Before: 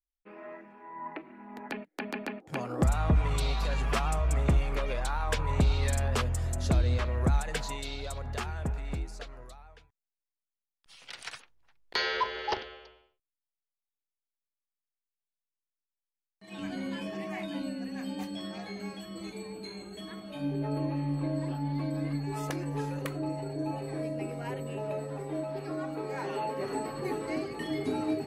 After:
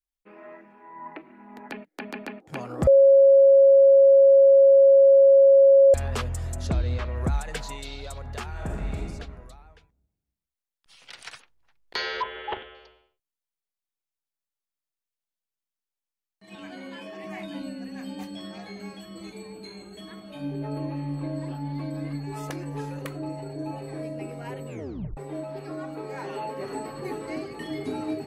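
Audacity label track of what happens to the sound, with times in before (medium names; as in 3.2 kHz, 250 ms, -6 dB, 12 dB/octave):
2.870000	5.940000	bleep 548 Hz -11 dBFS
6.670000	7.160000	distance through air 68 m
8.490000	9.020000	reverb throw, RT60 1.3 s, DRR -2 dB
12.220000	12.750000	elliptic low-pass 3.4 kHz
16.550000	17.240000	tone controls bass -12 dB, treble -4 dB
24.680000	24.680000	tape stop 0.49 s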